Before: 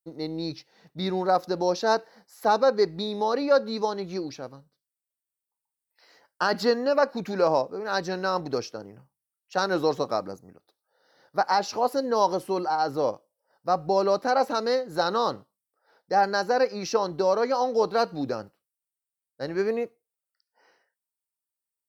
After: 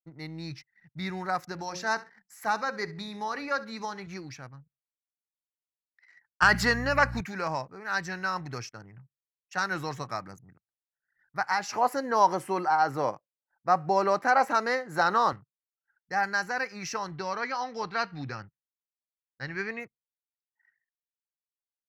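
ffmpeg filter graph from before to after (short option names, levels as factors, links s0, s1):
-filter_complex "[0:a]asettb=1/sr,asplit=3[s0][s1][s2];[s0]atrim=end=1.524[s3];[s1]atrim=start=1.52:end=4.07,asetpts=PTS-STARTPTS,afade=t=in:d=0.004:c=qsin,afade=t=out:st=2.546:d=0.004:c=qsin,bandreject=f=60:t=h:w=6,bandreject=f=120:t=h:w=6,bandreject=f=180:t=h:w=6,bandreject=f=240:t=h:w=6,bandreject=f=300:t=h:w=6,bandreject=f=360:t=h:w=6,bandreject=f=420:t=h:w=6,bandreject=f=480:t=h:w=6,bandreject=f=540:t=h:w=6,aecho=1:1:67|134:0.119|0.0273,atrim=end_sample=112455[s4];[s2]atrim=start=4.066[s5];[s3][s4]acrossfade=d=0.004:c1=hsin:c2=qsin[s6];[s6][s5]acrossfade=d=0.004:c1=qsin:c2=hsin,asettb=1/sr,asplit=3[s7][s8][s9];[s7]atrim=end=6.424[s10];[s8]atrim=start=6.42:end=7.21,asetpts=PTS-STARTPTS,afade=t=in:d=0.004:c=qsin,afade=t=out:st=0.786:d=0.004:c=qsin,aeval=exprs='val(0)+0.01*(sin(2*PI*60*n/s)+sin(2*PI*2*60*n/s)/2+sin(2*PI*3*60*n/s)/3+sin(2*PI*4*60*n/s)/4+sin(2*PI*5*60*n/s)/5)':c=same,acontrast=73[s11];[s9]atrim=start=7.206[s12];[s10][s11]acrossfade=d=0.004:c1=hsin:c2=qsin[s13];[s13][s12]acrossfade=d=0.004:c1=qsin:c2=hsin,asettb=1/sr,asplit=3[s14][s15][s16];[s14]atrim=end=11.694[s17];[s15]atrim=start=11.69:end=15.33,asetpts=PTS-STARTPTS,afade=t=in:d=0.004:c=qsin,afade=t=out:st=3.636:d=0.004:c=qsin,highpass=140,equalizer=f=550:w=0.43:g=9.5[s18];[s16]atrim=start=15.326[s19];[s17][s18]acrossfade=d=0.004:c1=hsin:c2=qsin[s20];[s20][s19]acrossfade=d=0.004:c1=qsin:c2=hsin,asettb=1/sr,asplit=3[s21][s22][s23];[s21]atrim=end=17.124[s24];[s22]atrim=start=17.12:end=19.8,asetpts=PTS-STARTPTS,afade=t=in:d=0.004:c=qsin,afade=t=out:st=2.676:d=0.004:c=qsin,lowpass=f=5000:w=0.5412,lowpass=f=5000:w=1.3066,highshelf=f=3100:g=6.5,bandreject=f=610:w=12[s25];[s23]atrim=start=19.796[s26];[s24][s25]acrossfade=d=0.004:c1=hsin:c2=qsin[s27];[s27][s26]acrossfade=d=0.004:c1=qsin:c2=hsin,equalizer=f=125:t=o:w=1:g=9,equalizer=f=250:t=o:w=1:g=-5,equalizer=f=500:t=o:w=1:g=-12,equalizer=f=2000:t=o:w=1:g=12,equalizer=f=4000:t=o:w=1:g=-8,equalizer=f=8000:t=o:w=1:g=9,anlmdn=0.00251,volume=0.631"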